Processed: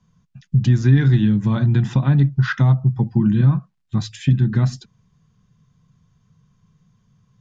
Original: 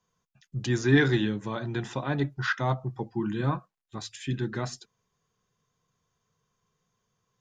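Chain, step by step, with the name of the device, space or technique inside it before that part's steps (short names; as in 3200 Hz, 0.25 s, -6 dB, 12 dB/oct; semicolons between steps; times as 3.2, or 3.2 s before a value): jukebox (LPF 6500 Hz 12 dB/oct; resonant low shelf 270 Hz +13.5 dB, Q 1.5; compressor 3:1, threshold -21 dBFS, peak gain reduction 13 dB); gain +7 dB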